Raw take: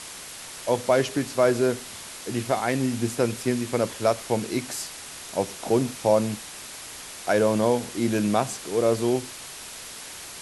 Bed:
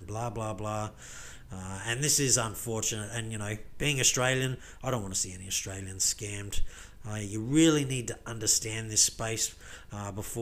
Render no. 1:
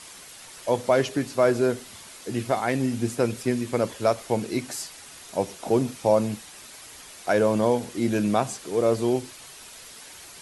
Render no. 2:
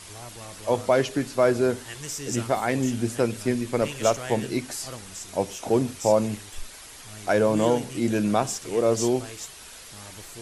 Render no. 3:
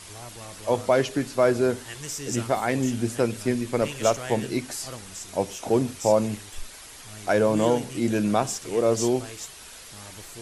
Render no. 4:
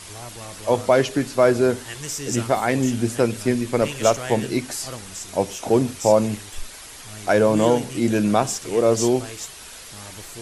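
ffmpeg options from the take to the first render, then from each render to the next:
-af "afftdn=nr=7:nf=-40"
-filter_complex "[1:a]volume=-8.5dB[a];[0:a][a]amix=inputs=2:normalize=0"
-af anull
-af "volume=4dB"

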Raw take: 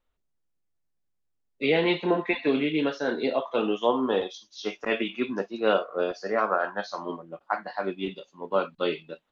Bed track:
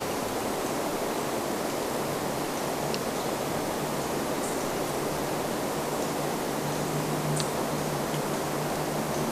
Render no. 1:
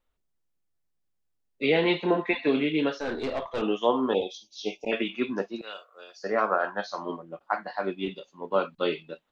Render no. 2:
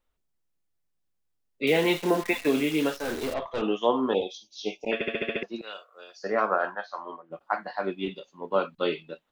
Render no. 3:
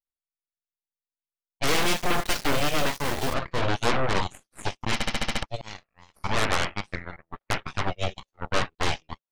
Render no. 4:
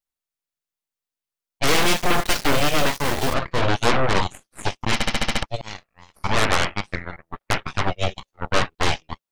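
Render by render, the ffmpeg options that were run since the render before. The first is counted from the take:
-filter_complex "[0:a]asettb=1/sr,asplit=3[a][b][c];[a]atrim=end=3.004[d];[b]atrim=start=3:end=3.62,asetpts=PTS-STARTPTS,afade=t=in:d=0.004:c=qsin,afade=t=out:st=0.616:d=0.004:c=qsin,aeval=exprs='(tanh(17.8*val(0)+0.35)-tanh(0.35))/17.8':c=same[e];[c]atrim=start=3.616[f];[d][e]acrossfade=d=0.004:c1=hsin:c2=qsin[g];[g][f]acrossfade=d=0.004:c1=qsin:c2=hsin,asplit=3[h][i][j];[h]afade=t=out:st=4.13:d=0.02[k];[i]asuperstop=centerf=1400:order=20:qfactor=1.1,afade=t=in:st=4.13:d=0.02,afade=t=out:st=4.91:d=0.02[l];[j]afade=t=in:st=4.91:d=0.02[m];[k][l][m]amix=inputs=3:normalize=0,asettb=1/sr,asplit=3[n][o][p];[n]atrim=end=5.614[q];[o]atrim=start=5.61:end=6.24,asetpts=PTS-STARTPTS,afade=t=in:d=0.004:c=qsin,afade=t=out:st=0.626:d=0.004:c=qsin,aderivative[r];[p]atrim=start=6.236[s];[q][r]acrossfade=d=0.004:c1=hsin:c2=qsin[t];[t][s]acrossfade=d=0.004:c1=qsin:c2=hsin"
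-filter_complex "[0:a]asettb=1/sr,asplit=3[a][b][c];[a]atrim=end=1.674[d];[b]atrim=start=1.67:end=3.34,asetpts=PTS-STARTPTS,afade=t=in:d=0.004:c=qsin,afade=t=out:st=1.666:d=0.004:c=qsin,acrusher=bits=7:dc=4:mix=0:aa=0.000001[e];[c]atrim=start=3.336[f];[d][e]acrossfade=d=0.004:c1=hsin:c2=qsin[g];[g][f]acrossfade=d=0.004:c1=qsin:c2=hsin,asplit=3[h][i][j];[h]afade=t=out:st=6.74:d=0.02[k];[i]bandpass=f=1.2k:t=q:w=0.94,afade=t=in:st=6.74:d=0.02,afade=t=out:st=7.3:d=0.02[l];[j]afade=t=in:st=7.3:d=0.02[m];[k][l][m]amix=inputs=3:normalize=0,asplit=8[n][o][p][q][r][s][t][u];[n]atrim=end=5.012[v];[o]atrim=start=4.938:end=5.012[w];[p]atrim=start=4.938:end=5.012[x];[q]atrim=start=4.938:end=5.012[y];[r]atrim=start=4.938:end=5.012[z];[s]atrim=start=4.938:end=5.012[aa];[t]atrim=start=4.938:end=5.012[ab];[u]atrim=start=5.428[ac];[v][w]acrossfade=d=0.004:c1=hsin:c2=hsin[ad];[ad][x]acrossfade=d=0.004:c1=hsin:c2=hsin[ae];[ae][y]acrossfade=d=0.004:c1=hsin:c2=hsin[af];[af][z]acrossfade=d=0.004:c1=hsin:c2=hsin[ag];[ag][aa]acrossfade=d=0.004:c1=hsin:c2=hsin[ah];[ah][ab]acrossfade=d=0.004:c1=hsin:c2=hsin[ai];[ai][ac]acrossfade=d=0.004:c1=hsin:c2=hsin"
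-af "asoftclip=type=tanh:threshold=-13dB,aeval=exprs='0.211*(cos(1*acos(clip(val(0)/0.211,-1,1)))-cos(1*PI/2))+0.0668*(cos(3*acos(clip(val(0)/0.211,-1,1)))-cos(3*PI/2))+0.075*(cos(8*acos(clip(val(0)/0.211,-1,1)))-cos(8*PI/2))':c=same"
-af "volume=5dB"

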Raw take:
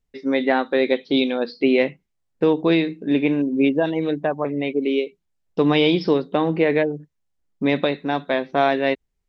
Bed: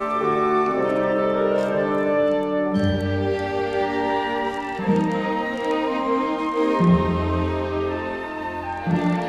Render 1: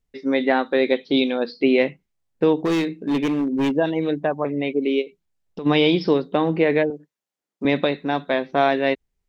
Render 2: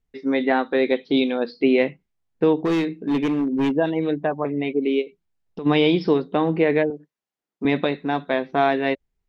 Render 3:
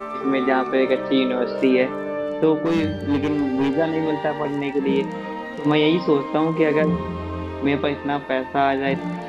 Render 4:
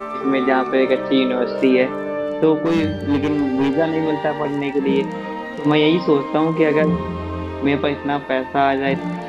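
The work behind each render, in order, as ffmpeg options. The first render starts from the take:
-filter_complex "[0:a]asettb=1/sr,asplit=3[a][b][c];[a]atrim=end=2.654[d];[b]atrim=start=2.65:end=3.75,asetpts=PTS-STARTPTS,afade=t=in:d=0.004:c=qsin,afade=t=out:st=1.096:d=0.004:c=qsin,asoftclip=type=hard:threshold=-17.5dB[e];[c]atrim=start=3.746[f];[d][e]acrossfade=d=0.004:c1=hsin:c2=qsin[g];[g][f]acrossfade=d=0.004:c1=qsin:c2=hsin,asplit=3[h][i][j];[h]afade=t=out:st=5.01:d=0.02[k];[i]acompressor=threshold=-29dB:ratio=5:attack=3.2:release=140:knee=1:detection=peak,afade=t=in:st=5.01:d=0.02,afade=t=out:st=5.65:d=0.02[l];[j]afade=t=in:st=5.65:d=0.02[m];[k][l][m]amix=inputs=3:normalize=0,asettb=1/sr,asplit=3[n][o][p];[n]atrim=end=6.904[q];[o]atrim=start=6.9:end=7.65,asetpts=PTS-STARTPTS,afade=t=in:d=0.004:c=qsin,afade=t=out:st=0.746:d=0.004:c=qsin,highpass=300[r];[p]atrim=start=7.646[s];[q][r]acrossfade=d=0.004:c1=hsin:c2=qsin[t];[t][s]acrossfade=d=0.004:c1=qsin:c2=hsin"
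-af "highshelf=f=4.9k:g=-9,bandreject=f=560:w=12"
-filter_complex "[1:a]volume=-6.5dB[a];[0:a][a]amix=inputs=2:normalize=0"
-af "volume=2.5dB"

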